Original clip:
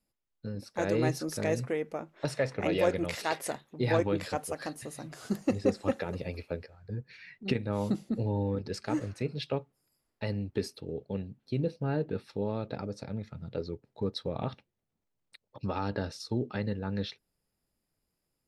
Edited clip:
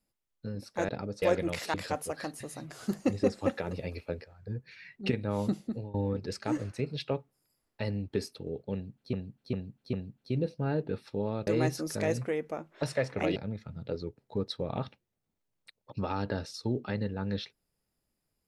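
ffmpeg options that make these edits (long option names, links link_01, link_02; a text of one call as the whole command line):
ffmpeg -i in.wav -filter_complex "[0:a]asplit=10[link_01][link_02][link_03][link_04][link_05][link_06][link_07][link_08][link_09][link_10];[link_01]atrim=end=0.892[link_11];[link_02]atrim=start=12.688:end=13.022[link_12];[link_03]atrim=start=2.778:end=3.302[link_13];[link_04]atrim=start=4.158:end=8.36,asetpts=PTS-STARTPTS,afade=type=out:start_time=3.862:duration=0.34:silence=0.0891251[link_14];[link_05]atrim=start=8.36:end=11.552,asetpts=PTS-STARTPTS,afade=type=in:duration=0.004:curve=hsin:silence=0.0891251[link_15];[link_06]atrim=start=11.148:end=11.552[link_16];[link_07]atrim=start=11.148:end=11.552[link_17];[link_08]atrim=start=11.148:end=12.692[link_18];[link_09]atrim=start=0.888:end=2.782[link_19];[link_10]atrim=start=13.018[link_20];[link_11][link_12]acrossfade=duration=0.004:curve1=hsin:curve2=hsin[link_21];[link_21][link_13]acrossfade=duration=0.004:curve1=hsin:curve2=hsin[link_22];[link_14][link_15]concat=n=2:v=0:a=1[link_23];[link_22][link_23]acrossfade=duration=0.004:curve1=hsin:curve2=hsin[link_24];[link_24][link_16]acrossfade=duration=0.004:curve1=hsin:curve2=hsin[link_25];[link_25][link_17]acrossfade=duration=0.004:curve1=hsin:curve2=hsin[link_26];[link_26][link_18]acrossfade=duration=0.004:curve1=hsin:curve2=hsin[link_27];[link_27][link_19]acrossfade=duration=0.004:curve1=hsin:curve2=hsin[link_28];[link_28][link_20]acrossfade=duration=0.004:curve1=hsin:curve2=hsin" out.wav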